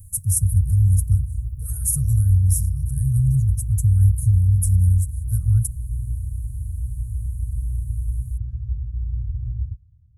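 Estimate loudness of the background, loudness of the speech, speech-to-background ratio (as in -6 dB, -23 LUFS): -28.0 LUFS, -20.0 LUFS, 8.0 dB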